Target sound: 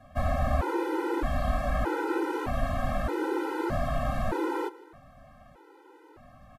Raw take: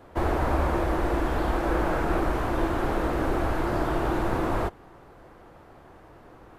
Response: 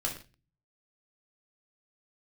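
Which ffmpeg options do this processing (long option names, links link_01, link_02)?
-af "aecho=1:1:152|304|456:0.0841|0.0353|0.0148,afftfilt=real='re*gt(sin(2*PI*0.81*pts/sr)*(1-2*mod(floor(b*sr/1024/260),2)),0)':imag='im*gt(sin(2*PI*0.81*pts/sr)*(1-2*mod(floor(b*sr/1024/260),2)),0)':win_size=1024:overlap=0.75"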